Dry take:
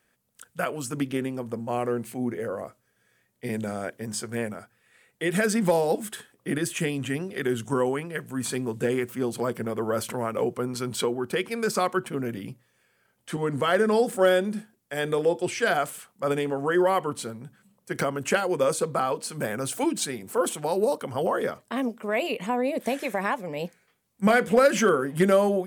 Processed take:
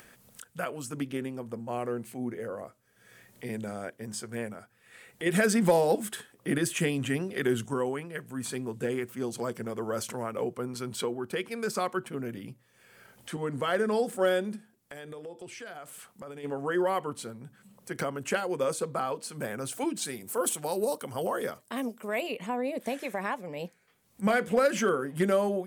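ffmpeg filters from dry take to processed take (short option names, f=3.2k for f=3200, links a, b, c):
-filter_complex "[0:a]asettb=1/sr,asplit=3[a][b][c];[a]atrim=end=5.264[d];[b]atrim=start=5.26:end=7.66,asetpts=PTS-STARTPTS,afade=t=in:d=0.004:c=qsin,afade=t=out:st=2.396:d=0.004:c=qsin,acontrast=26[e];[c]atrim=start=7.656[f];[d][e]acrossfade=d=0.004:c1=hsin:c2=qsin[g];[g][f]acrossfade=d=0.004:c1=qsin:c2=hsin,asettb=1/sr,asplit=3[h][i][j];[h]atrim=end=9.174[k];[i]atrim=start=9.17:end=10.23,asetpts=PTS-STARTPTS,afade=t=in:d=0.004:c=qsin,afade=t=out:st=1.056:d=0.004:c=qsin,equalizer=f=6.2k:t=o:w=0.84:g=7[l];[j]atrim=start=10.226[m];[k][l]acrossfade=d=0.004:c1=hsin:c2=qsin[n];[n][m]acrossfade=d=0.004:c1=qsin:c2=hsin,asplit=3[o][p][q];[o]afade=t=out:st=14.55:d=0.02[r];[p]acompressor=threshold=-42dB:ratio=2.5:attack=3.2:release=140:knee=1:detection=peak,afade=t=in:st=14.55:d=0.02,afade=t=out:st=16.43:d=0.02[s];[q]afade=t=in:st=16.43:d=0.02[t];[r][s][t]amix=inputs=3:normalize=0,asettb=1/sr,asplit=3[u][v][w];[u]atrim=end=20.054[x];[v]atrim=start=20.05:end=22.21,asetpts=PTS-STARTPTS,afade=t=in:d=0.004:c=qsin,afade=t=out:st=2.156:d=0.004:c=qsin,highshelf=f=5.7k:g=11.5[y];[w]atrim=start=22.206[z];[x][y]acrossfade=d=0.004:c1=hsin:c2=qsin[aa];[aa][z]acrossfade=d=0.004:c1=qsin:c2=hsin,acompressor=mode=upward:threshold=-33dB:ratio=2.5,volume=-5.5dB"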